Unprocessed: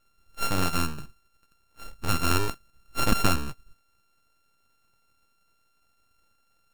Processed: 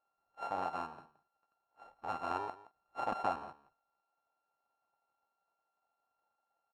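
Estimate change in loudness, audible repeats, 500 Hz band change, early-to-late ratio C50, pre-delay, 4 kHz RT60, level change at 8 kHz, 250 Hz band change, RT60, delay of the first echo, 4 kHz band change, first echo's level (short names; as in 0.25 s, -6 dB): -11.5 dB, 1, -8.0 dB, none, none, none, under -30 dB, -18.5 dB, none, 0.17 s, -23.5 dB, -17.5 dB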